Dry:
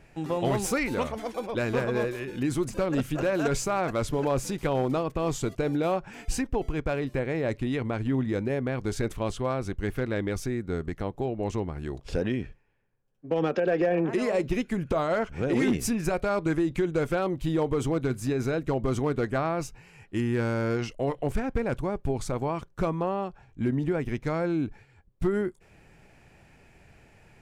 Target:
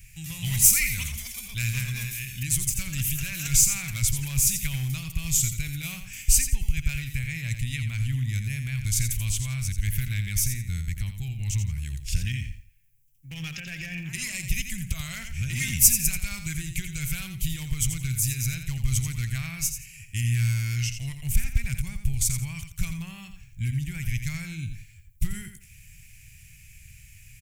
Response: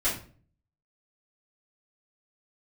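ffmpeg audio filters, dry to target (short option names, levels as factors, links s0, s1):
-filter_complex "[0:a]equalizer=f=480:t=o:w=1.6:g=-14.5,asplit=2[s0][s1];[s1]aecho=0:1:85|170|255:0.376|0.0902|0.0216[s2];[s0][s2]amix=inputs=2:normalize=0,aexciter=amount=2.1:drive=6.3:freq=5800,firequalizer=gain_entry='entry(110,0);entry(280,-26);entry(470,-30);entry(1300,-22);entry(2200,-1);entry(4000,-3);entry(11000,5)':delay=0.05:min_phase=1,volume=2.82"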